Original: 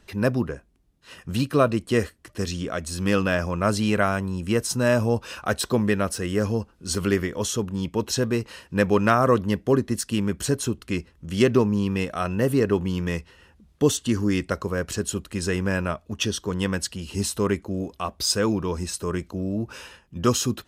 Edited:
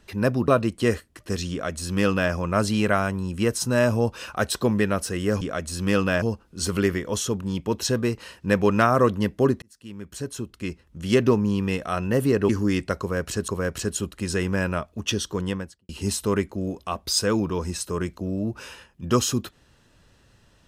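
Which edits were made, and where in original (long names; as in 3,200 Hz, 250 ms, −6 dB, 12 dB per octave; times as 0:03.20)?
0:00.48–0:01.57: remove
0:02.60–0:03.41: duplicate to 0:06.50
0:09.90–0:11.53: fade in
0:12.77–0:14.10: remove
0:14.61–0:15.09: repeat, 2 plays
0:16.47–0:17.02: fade out and dull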